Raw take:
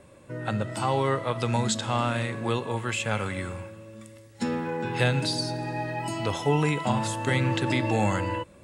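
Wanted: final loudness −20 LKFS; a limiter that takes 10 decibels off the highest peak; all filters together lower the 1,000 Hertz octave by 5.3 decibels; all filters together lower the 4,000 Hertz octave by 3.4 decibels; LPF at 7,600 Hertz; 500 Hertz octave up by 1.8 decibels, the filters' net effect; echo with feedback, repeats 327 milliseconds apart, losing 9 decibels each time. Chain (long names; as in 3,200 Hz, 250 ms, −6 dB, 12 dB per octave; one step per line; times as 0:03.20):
low-pass filter 7,600 Hz
parametric band 500 Hz +4 dB
parametric band 1,000 Hz −8 dB
parametric band 4,000 Hz −3.5 dB
brickwall limiter −20.5 dBFS
repeating echo 327 ms, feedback 35%, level −9 dB
level +10.5 dB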